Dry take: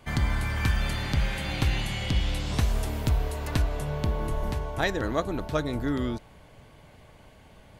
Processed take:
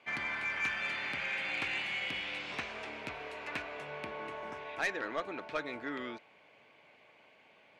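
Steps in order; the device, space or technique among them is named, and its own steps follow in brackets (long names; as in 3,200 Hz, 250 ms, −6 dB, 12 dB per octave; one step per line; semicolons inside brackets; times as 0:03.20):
0:02.55–0:03.15: low-pass filter 7,800 Hz 12 dB per octave
0:04.53–0:04.73: healed spectral selection 1,700–5,000 Hz both
dynamic equaliser 1,600 Hz, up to +5 dB, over −46 dBFS, Q 1.3
intercom (band-pass filter 360–4,300 Hz; parametric band 2,400 Hz +11 dB 0.46 octaves; soft clipping −17.5 dBFS, distortion −15 dB)
level −7.5 dB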